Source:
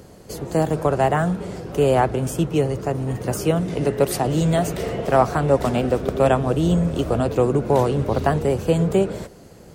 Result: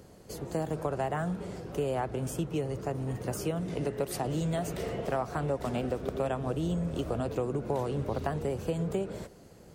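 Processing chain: compression 4:1, threshold -19 dBFS, peak gain reduction 8.5 dB; trim -8.5 dB

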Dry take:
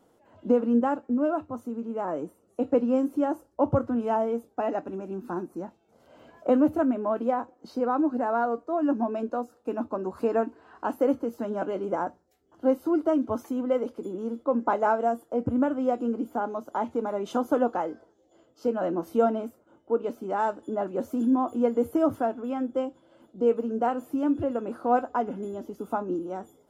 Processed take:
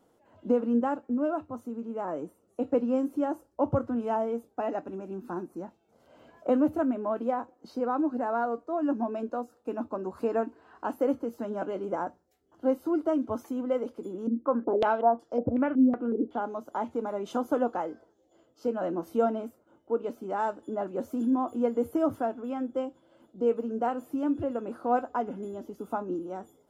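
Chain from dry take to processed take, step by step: 14.27–16.41 s: step-sequenced low-pass 5.4 Hz 270–5300 Hz; trim -3 dB

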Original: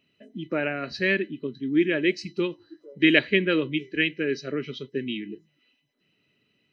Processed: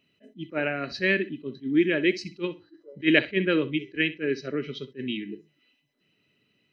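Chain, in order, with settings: 2.42–4.75 s: treble shelf 4.6 kHz -7 dB; flutter echo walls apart 10.9 m, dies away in 0.24 s; attacks held to a fixed rise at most 350 dB/s

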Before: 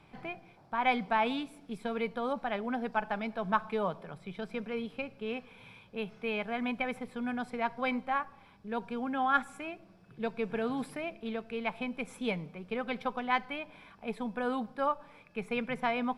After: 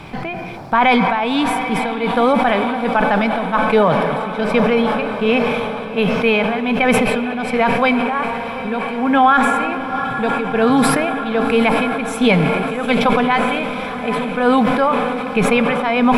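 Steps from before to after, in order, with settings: in parallel at -1.5 dB: compression, threshold -43 dBFS, peak gain reduction 20.5 dB; on the sum: tremolo 1.3 Hz, depth 81%; echo that smears into a reverb 768 ms, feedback 70%, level -12.5 dB; on a send at -16 dB: reverberation RT60 3.3 s, pre-delay 64 ms; on the sum: loudness maximiser +22 dB; decay stretcher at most 25 dB/s; trim -3 dB

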